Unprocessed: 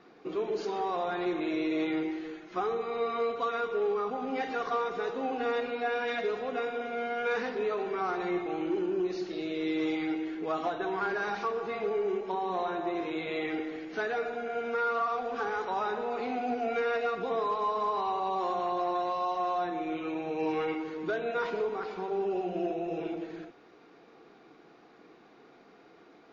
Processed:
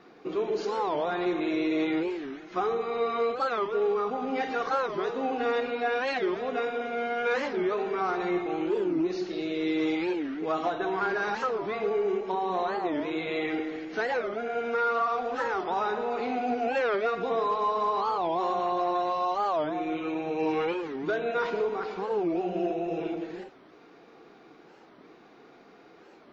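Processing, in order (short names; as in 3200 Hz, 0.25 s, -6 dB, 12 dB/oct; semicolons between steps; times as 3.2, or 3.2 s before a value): record warp 45 rpm, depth 250 cents; gain +3 dB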